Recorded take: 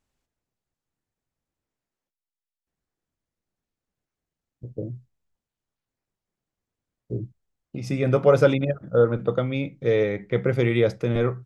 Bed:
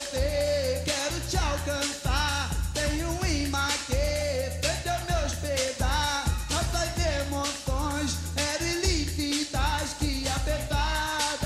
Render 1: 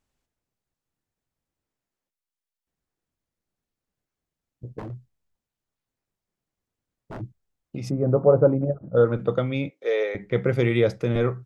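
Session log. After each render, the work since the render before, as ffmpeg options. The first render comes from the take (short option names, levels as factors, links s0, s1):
-filter_complex "[0:a]asplit=3[s0][s1][s2];[s0]afade=t=out:st=4.78:d=0.02[s3];[s1]aeval=exprs='0.0299*(abs(mod(val(0)/0.0299+3,4)-2)-1)':c=same,afade=t=in:st=4.78:d=0.02,afade=t=out:st=7.2:d=0.02[s4];[s2]afade=t=in:st=7.2:d=0.02[s5];[s3][s4][s5]amix=inputs=3:normalize=0,asplit=3[s6][s7][s8];[s6]afade=t=out:st=7.89:d=0.02[s9];[s7]lowpass=f=1000:w=0.5412,lowpass=f=1000:w=1.3066,afade=t=in:st=7.89:d=0.02,afade=t=out:st=8.95:d=0.02[s10];[s8]afade=t=in:st=8.95:d=0.02[s11];[s9][s10][s11]amix=inputs=3:normalize=0,asettb=1/sr,asplit=3[s12][s13][s14];[s12]atrim=end=9.704[s15];[s13]atrim=start=9.7:end=10.15,asetpts=PTS-STARTPTS,afade=t=in:d=0.004:c=qsin,afade=t=out:st=0.446:d=0.004:c=qsin,highpass=f=440:w=0.5412,highpass=f=440:w=1.3066[s16];[s14]atrim=start=10.146[s17];[s15][s16]acrossfade=d=0.004:c1=hsin:c2=qsin[s18];[s18][s17]acrossfade=d=0.004:c1=qsin:c2=hsin"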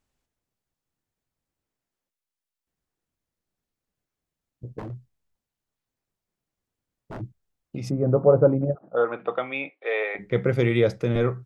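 -filter_complex "[0:a]asettb=1/sr,asplit=3[s0][s1][s2];[s0]atrim=end=8.754[s3];[s1]atrim=start=8.75:end=10.19,asetpts=PTS-STARTPTS,afade=t=in:d=0.004:c=qsin,afade=t=out:st=1.436:d=0.004:c=qsin,highpass=450,equalizer=f=520:t=q:w=4:g=-4,equalizer=f=750:t=q:w=4:g=8,equalizer=f=1100:t=q:w=4:g=5,equalizer=f=1800:t=q:w=4:g=4,equalizer=f=2500:t=q:w=4:g=7,lowpass=f=3500:w=0.5412,lowpass=f=3500:w=1.3066[s4];[s2]atrim=start=10.186[s5];[s3][s4]acrossfade=d=0.004:c1=hsin:c2=qsin[s6];[s6][s5]acrossfade=d=0.004:c1=qsin:c2=hsin"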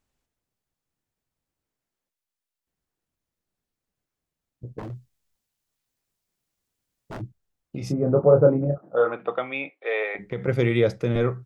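-filter_complex "[0:a]asettb=1/sr,asplit=3[s0][s1][s2];[s0]atrim=end=4.834[s3];[s1]atrim=start=4.83:end=7.22,asetpts=PTS-STARTPTS,afade=t=in:d=0.004:c=qsin,afade=t=out:st=2.386:d=0.004:c=qsin,highshelf=f=2300:g=8.5[s4];[s2]atrim=start=7.216[s5];[s3][s4]acrossfade=d=0.004:c1=hsin:c2=qsin[s6];[s6][s5]acrossfade=d=0.004:c1=qsin:c2=hsin,asettb=1/sr,asplit=3[s7][s8][s9];[s7]atrim=end=7.784[s10];[s8]atrim=start=7.78:end=9.14,asetpts=PTS-STARTPTS,afade=t=in:d=0.004:c=qsin,afade=t=out:st=1.356:d=0.004:c=qsin,asplit=2[s11][s12];[s12]adelay=27,volume=0.562[s13];[s11][s13]amix=inputs=2:normalize=0,atrim=end_sample=59976[s14];[s9]atrim=start=9.136[s15];[s10][s14]acrossfade=d=0.004:c1=hsin:c2=qsin[s16];[s16][s15]acrossfade=d=0.004:c1=qsin:c2=hsin,asettb=1/sr,asplit=3[s17][s18][s19];[s17]atrim=end=10.054[s20];[s18]atrim=start=10.05:end=10.48,asetpts=PTS-STARTPTS,afade=t=in:d=0.004:c=qsin,afade=t=out:st=0.426:d=0.004:c=qsin,acompressor=threshold=0.0631:ratio=6:attack=3.2:release=140:knee=1:detection=peak[s21];[s19]atrim=start=10.476[s22];[s20][s21]acrossfade=d=0.004:c1=hsin:c2=qsin[s23];[s23][s22]acrossfade=d=0.004:c1=qsin:c2=hsin"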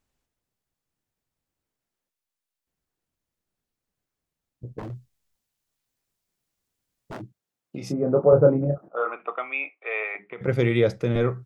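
-filter_complex "[0:a]asettb=1/sr,asplit=3[s0][s1][s2];[s0]atrim=end=7.134[s3];[s1]atrim=start=7.13:end=8.33,asetpts=PTS-STARTPTS,afade=t=in:d=0.004:c=qsin,afade=t=out:st=1.196:d=0.004:c=qsin,highpass=170[s4];[s2]atrim=start=8.326[s5];[s3][s4]acrossfade=d=0.004:c1=hsin:c2=qsin[s6];[s6][s5]acrossfade=d=0.004:c1=qsin:c2=hsin,asettb=1/sr,asplit=3[s7][s8][s9];[s7]atrim=end=8.884[s10];[s8]atrim=start=8.88:end=10.41,asetpts=PTS-STARTPTS,afade=t=in:d=0.004:c=qsin,afade=t=out:st=1.526:d=0.004:c=qsin,highpass=470,equalizer=f=520:t=q:w=4:g=-8,equalizer=f=830:t=q:w=4:g=-3,equalizer=f=1200:t=q:w=4:g=4,equalizer=f=1700:t=q:w=4:g=-6,equalizer=f=2500:t=q:w=4:g=6,lowpass=f=2700:w=0.5412,lowpass=f=2700:w=1.3066[s11];[s9]atrim=start=10.406[s12];[s10][s11]acrossfade=d=0.004:c1=hsin:c2=qsin[s13];[s13][s12]acrossfade=d=0.004:c1=qsin:c2=hsin"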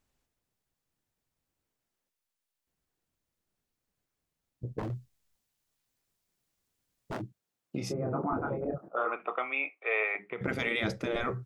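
-af "afftfilt=real='re*lt(hypot(re,im),0.316)':imag='im*lt(hypot(re,im),0.316)':win_size=1024:overlap=0.75"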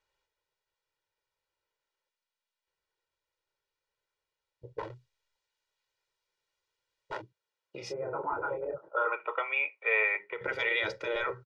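-filter_complex "[0:a]acrossover=split=450 5700:gain=0.158 1 0.0708[s0][s1][s2];[s0][s1][s2]amix=inputs=3:normalize=0,aecho=1:1:2.1:0.85"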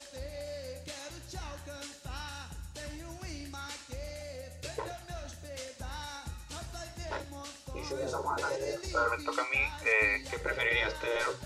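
-filter_complex "[1:a]volume=0.178[s0];[0:a][s0]amix=inputs=2:normalize=0"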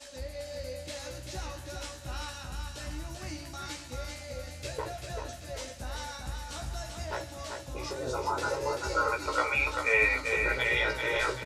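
-filter_complex "[0:a]asplit=2[s0][s1];[s1]adelay=16,volume=0.631[s2];[s0][s2]amix=inputs=2:normalize=0,asplit=2[s3][s4];[s4]aecho=0:1:389|778|1167|1556|1945:0.562|0.236|0.0992|0.0417|0.0175[s5];[s3][s5]amix=inputs=2:normalize=0"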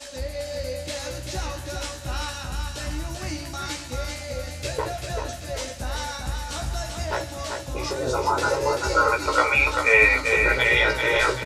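-af "volume=2.66"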